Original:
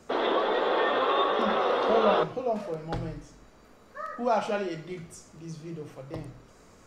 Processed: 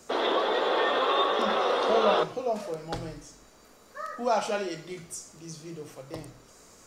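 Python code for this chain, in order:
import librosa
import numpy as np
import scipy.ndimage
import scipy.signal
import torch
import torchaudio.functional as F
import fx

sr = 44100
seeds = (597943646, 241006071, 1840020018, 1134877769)

y = fx.bass_treble(x, sr, bass_db=-5, treble_db=10)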